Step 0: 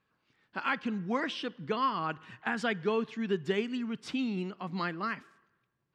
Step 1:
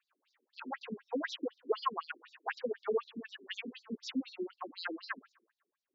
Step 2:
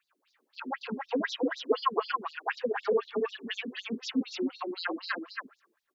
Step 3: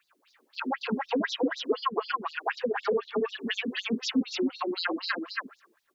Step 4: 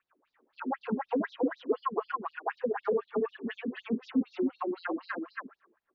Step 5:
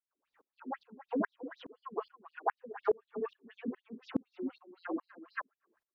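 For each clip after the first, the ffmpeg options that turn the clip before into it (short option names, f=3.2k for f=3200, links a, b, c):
-af "afftfilt=real='re*between(b*sr/1024,300*pow(5400/300,0.5+0.5*sin(2*PI*4*pts/sr))/1.41,300*pow(5400/300,0.5+0.5*sin(2*PI*4*pts/sr))*1.41)':imag='im*between(b*sr/1024,300*pow(5400/300,0.5+0.5*sin(2*PI*4*pts/sr))/1.41,300*pow(5400/300,0.5+0.5*sin(2*PI*4*pts/sr))*1.41)':win_size=1024:overlap=0.75,volume=2.5dB"
-af "aecho=1:1:275:0.631,volume=5.5dB"
-filter_complex "[0:a]acrossover=split=190[a][b];[b]acompressor=threshold=-36dB:ratio=2.5[c];[a][c]amix=inputs=2:normalize=0,volume=7.5dB"
-af "lowpass=1.3k,volume=-1.5dB"
-af "aeval=exprs='val(0)*pow(10,-35*if(lt(mod(-2.4*n/s,1),2*abs(-2.4)/1000),1-mod(-2.4*n/s,1)/(2*abs(-2.4)/1000),(mod(-2.4*n/s,1)-2*abs(-2.4)/1000)/(1-2*abs(-2.4)/1000))/20)':c=same,volume=3dB"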